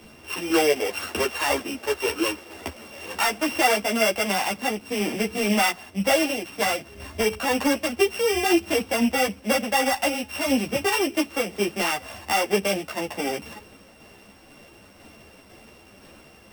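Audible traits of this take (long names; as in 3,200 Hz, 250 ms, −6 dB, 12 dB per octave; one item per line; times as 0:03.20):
a buzz of ramps at a fixed pitch in blocks of 16 samples
tremolo saw down 2 Hz, depth 35%
a shimmering, thickened sound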